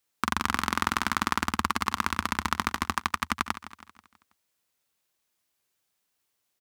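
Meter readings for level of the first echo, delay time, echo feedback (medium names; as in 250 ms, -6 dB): -14.0 dB, 162 ms, 48%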